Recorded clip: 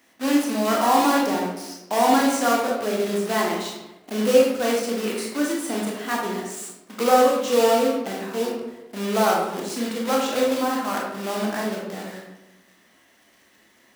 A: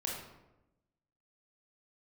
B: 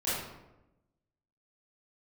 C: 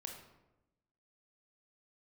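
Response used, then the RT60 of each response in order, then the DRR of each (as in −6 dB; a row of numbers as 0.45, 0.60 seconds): A; 0.95, 0.95, 0.95 seconds; −2.5, −12.0, 2.0 decibels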